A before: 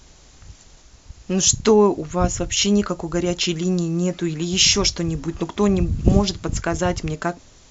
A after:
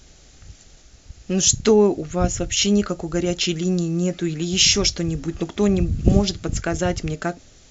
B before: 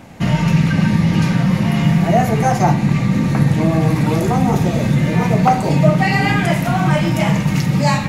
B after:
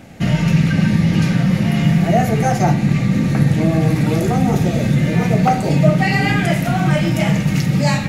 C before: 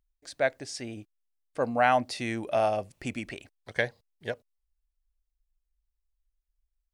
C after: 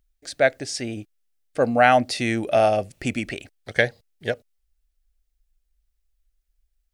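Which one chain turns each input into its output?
peaking EQ 1 kHz -11 dB 0.35 oct; peak normalisation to -1.5 dBFS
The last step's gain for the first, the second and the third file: 0.0 dB, 0.0 dB, +8.5 dB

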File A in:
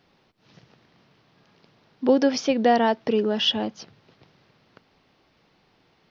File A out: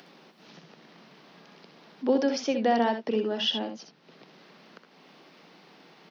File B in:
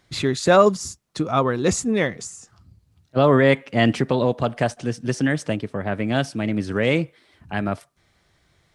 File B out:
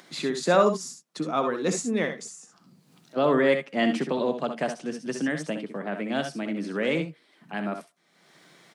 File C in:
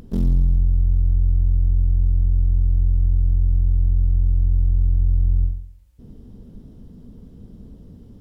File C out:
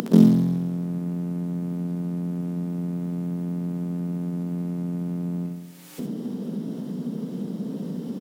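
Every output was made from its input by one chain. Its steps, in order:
steep high-pass 160 Hz 48 dB/octave; upward compressor, threshold -36 dBFS; early reflections 64 ms -8.5 dB, 77 ms -13 dB; normalise loudness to -27 LUFS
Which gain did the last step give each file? -5.5 dB, -6.0 dB, +11.5 dB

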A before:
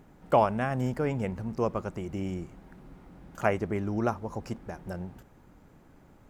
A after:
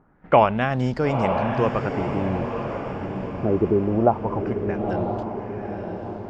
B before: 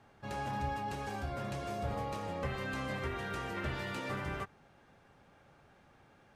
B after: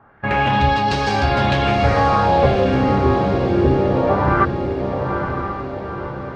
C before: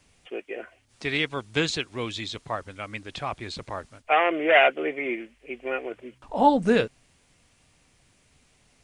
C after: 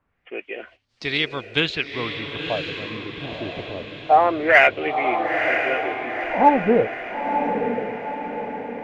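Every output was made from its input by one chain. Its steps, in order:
gate -50 dBFS, range -11 dB; LFO low-pass sine 0.23 Hz 310–4700 Hz; in parallel at -11.5 dB: overload inside the chain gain 9 dB; on the sum: echo that smears into a reverb 953 ms, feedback 52%, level -5.5 dB; peak normalisation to -3 dBFS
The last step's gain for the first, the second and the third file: +4.0 dB, +17.5 dB, -1.0 dB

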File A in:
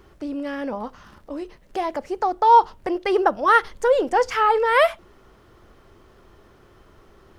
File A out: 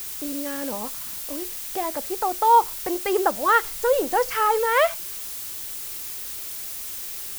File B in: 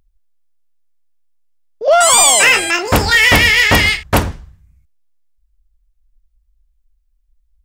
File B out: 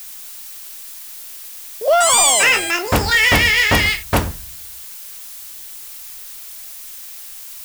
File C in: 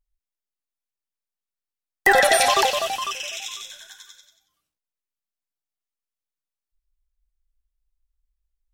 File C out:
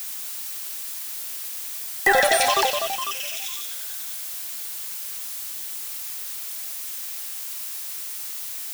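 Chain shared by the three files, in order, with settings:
added noise blue -31 dBFS; peak normalisation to -6 dBFS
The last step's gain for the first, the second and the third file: -2.5 dB, -3.5 dB, -2.0 dB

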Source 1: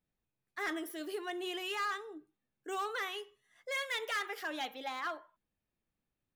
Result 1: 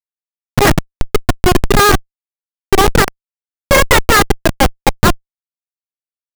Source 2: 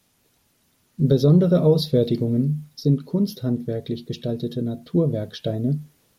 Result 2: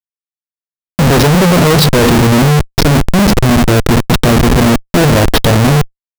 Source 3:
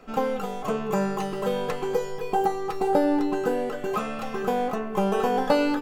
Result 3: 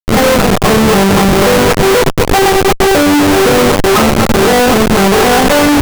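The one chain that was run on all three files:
Schmitt trigger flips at -32 dBFS; peak normalisation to -1.5 dBFS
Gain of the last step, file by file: +33.0 dB, +14.5 dB, +18.0 dB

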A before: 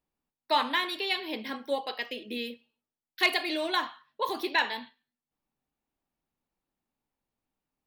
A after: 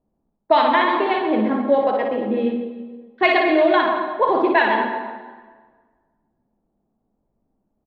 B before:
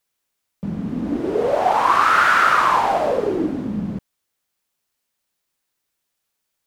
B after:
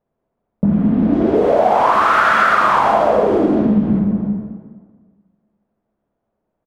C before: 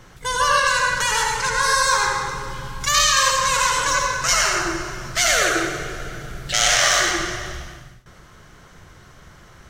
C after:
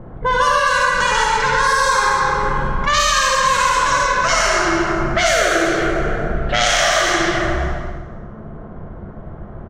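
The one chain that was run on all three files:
treble shelf 2.8 kHz -8.5 dB; hum notches 60/120/180/240 Hz; small resonant body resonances 660/3300 Hz, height 7 dB; on a send: reverse bouncing-ball echo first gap 60 ms, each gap 1.25×, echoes 5; on the sum: level-controlled noise filter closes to 630 Hz, open at -14.5 dBFS; peaking EQ 210 Hz +7.5 dB 0.22 oct; plate-style reverb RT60 1.6 s, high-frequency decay 0.7×, pre-delay 110 ms, DRR 13.5 dB; in parallel at -11.5 dB: hard clipper -11 dBFS; on the sum: compression 4:1, threshold -25 dBFS; peak normalisation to -3 dBFS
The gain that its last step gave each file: +13.0 dB, +12.0 dB, +10.5 dB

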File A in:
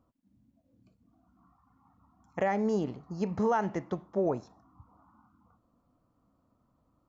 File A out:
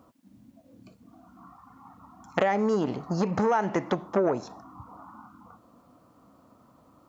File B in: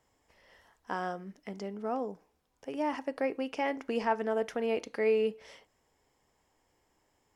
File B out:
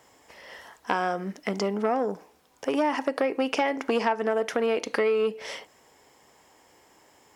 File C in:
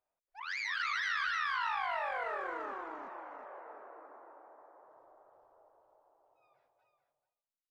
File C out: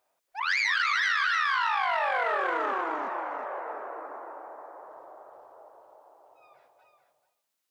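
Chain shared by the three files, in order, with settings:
high-pass 260 Hz 6 dB/octave; compression 12:1, threshold -36 dBFS; transformer saturation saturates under 1 kHz; normalise loudness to -27 LUFS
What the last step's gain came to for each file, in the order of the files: +17.0 dB, +16.5 dB, +14.0 dB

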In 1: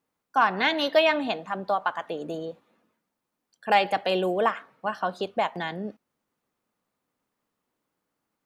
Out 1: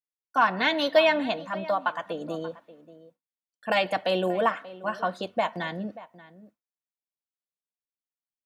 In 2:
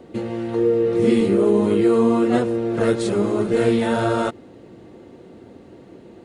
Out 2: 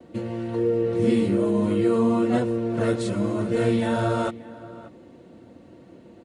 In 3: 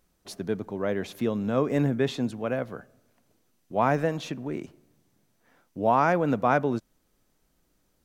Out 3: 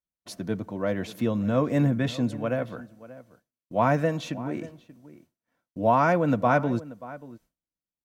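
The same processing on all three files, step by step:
echo from a far wall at 100 m, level -17 dB; expander -51 dBFS; comb of notches 410 Hz; dynamic bell 100 Hz, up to +5 dB, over -41 dBFS, Q 1.9; peak normalisation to -9 dBFS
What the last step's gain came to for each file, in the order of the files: +0.5 dB, -3.0 dB, +1.5 dB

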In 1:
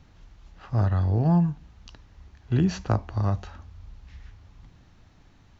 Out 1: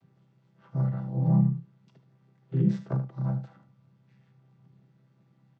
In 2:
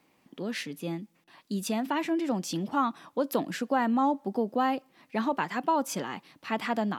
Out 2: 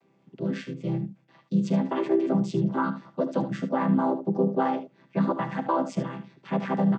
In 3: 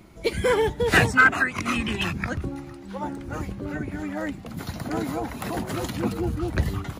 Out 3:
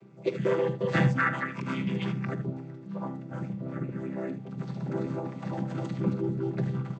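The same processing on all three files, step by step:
vocoder on a held chord major triad, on C3; on a send: early reflections 45 ms -17.5 dB, 75 ms -11.5 dB; on the sum: peak normalisation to -12 dBFS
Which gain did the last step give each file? -2.0 dB, +4.5 dB, -4.0 dB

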